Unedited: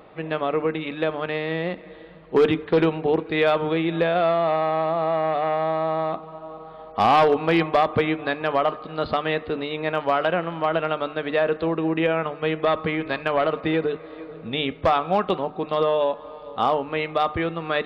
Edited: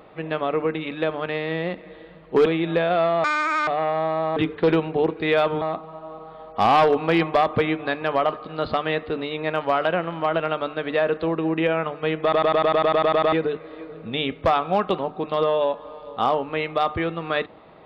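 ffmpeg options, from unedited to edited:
-filter_complex "[0:a]asplit=17[a][b][c][d][e][f][g][h][i][j][k][l][m][n][o][p][q];[a]atrim=end=2.462[r];[b]atrim=start=3.708:end=4.494[s];[c]atrim=start=4.49:end=5.32,asetpts=PTS-STARTPTS,asetrate=84231,aresample=44100[t];[d]atrim=start=5.316:end=6.012[u];[e]atrim=start=2.458:end=3.712[v];[f]atrim=start=6.008:end=12.722[w];[g]atrim=start=12.618:end=12.722[x];[h]atrim=start=12.618:end=12.722[y];[i]atrim=start=12.618:end=12.722[z];[j]atrim=start=12.618:end=12.722[aa];[k]atrim=start=12.618:end=12.722[ab];[l]atrim=start=12.618:end=12.722[ac];[m]atrim=start=12.618:end=12.722[ad];[n]atrim=start=12.618:end=12.722[ae];[o]atrim=start=12.618:end=12.722[af];[p]atrim=start=12.618:end=12.722[ag];[q]atrim=start=13.718[ah];[r][s]acrossfade=d=0.004:c1=hsin:c2=hsin[ai];[ai][t]acrossfade=d=0.004:c1=hsin:c2=hsin[aj];[aj][u]acrossfade=d=0.004:c1=hsin:c2=hsin[ak];[ak][v]acrossfade=d=0.004:c1=hsin:c2=hsin[al];[al][w]acrossfade=d=0.004:c1=hsin:c2=hsin[am];[am][x]acrossfade=d=0.004:c1=hsin:c2=hsin[an];[an][y]acrossfade=d=0.004:c1=hsin:c2=hsin[ao];[ao][z]acrossfade=d=0.004:c1=hsin:c2=hsin[ap];[ap][aa]acrossfade=d=0.004:c1=hsin:c2=hsin[aq];[aq][ab]acrossfade=d=0.004:c1=hsin:c2=hsin[ar];[ar][ac]acrossfade=d=0.004:c1=hsin:c2=hsin[as];[as][ad]acrossfade=d=0.004:c1=hsin:c2=hsin[at];[at][ae]acrossfade=d=0.004:c1=hsin:c2=hsin[au];[au][af]acrossfade=d=0.004:c1=hsin:c2=hsin[av];[av][ag]acrossfade=d=0.004:c1=hsin:c2=hsin[aw];[aw][ah]acrossfade=d=0.004:c1=hsin:c2=hsin"

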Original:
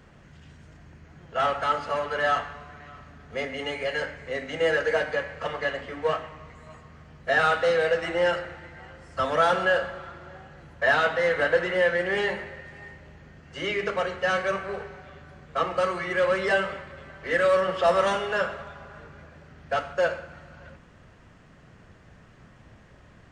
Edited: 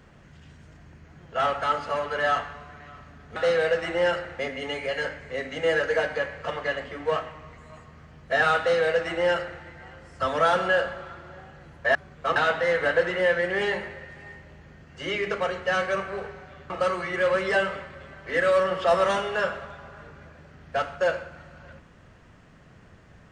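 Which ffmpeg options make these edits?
-filter_complex "[0:a]asplit=6[a][b][c][d][e][f];[a]atrim=end=3.362[g];[b]atrim=start=7.558:end=8.592[h];[c]atrim=start=3.358:end=10.922[i];[d]atrim=start=15.258:end=15.672[j];[e]atrim=start=10.918:end=15.262[k];[f]atrim=start=15.668[l];[g][h]acrossfade=d=0.004:c1=hsin:c2=hsin[m];[m][i]acrossfade=d=0.004:c1=hsin:c2=hsin[n];[n][j]acrossfade=d=0.004:c1=hsin:c2=hsin[o];[o][k]acrossfade=d=0.004:c1=hsin:c2=hsin[p];[p][l]acrossfade=d=0.004:c1=hsin:c2=hsin"

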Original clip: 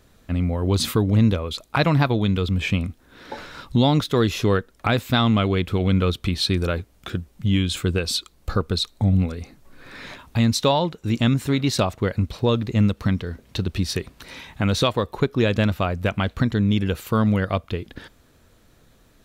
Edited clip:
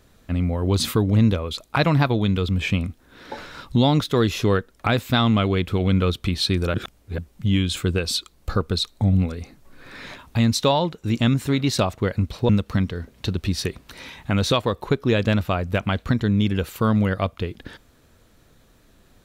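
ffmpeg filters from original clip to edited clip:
-filter_complex "[0:a]asplit=4[a][b][c][d];[a]atrim=end=6.742[e];[b]atrim=start=6.738:end=7.182,asetpts=PTS-STARTPTS,areverse[f];[c]atrim=start=7.178:end=12.492[g];[d]atrim=start=12.798[h];[e][f]acrossfade=d=0.004:c1=hsin:c2=hsin[i];[i][g]acrossfade=d=0.004:c1=hsin:c2=hsin[j];[j][h]acrossfade=d=0.004:c1=hsin:c2=hsin"

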